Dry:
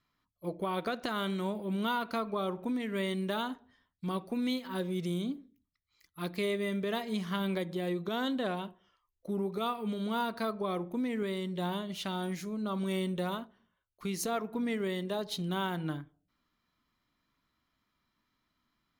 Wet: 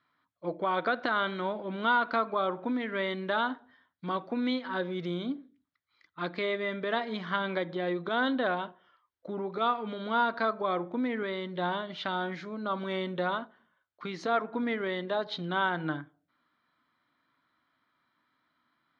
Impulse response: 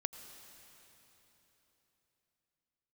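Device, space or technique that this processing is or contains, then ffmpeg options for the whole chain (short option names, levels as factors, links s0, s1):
kitchen radio: -af "highpass=190,equalizer=f=200:t=q:w=4:g=-9,equalizer=f=400:t=q:w=4:g=-6,equalizer=f=1500:t=q:w=4:g=5,equalizer=f=2700:t=q:w=4:g=-8,lowpass=f=3700:w=0.5412,lowpass=f=3700:w=1.3066,volume=2"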